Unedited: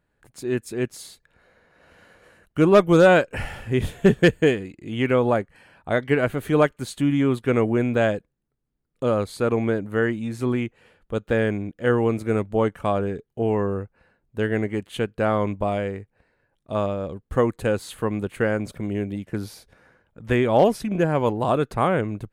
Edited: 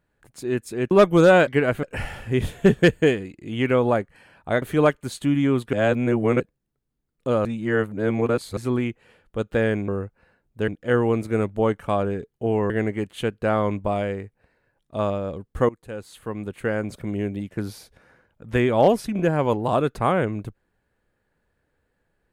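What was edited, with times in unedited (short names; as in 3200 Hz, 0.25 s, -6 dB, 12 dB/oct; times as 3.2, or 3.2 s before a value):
0.91–2.67 cut
6.02–6.38 move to 3.23
7.49–8.16 reverse
9.21–10.33 reverse
13.66–14.46 move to 11.64
17.45–18.86 fade in, from -19.5 dB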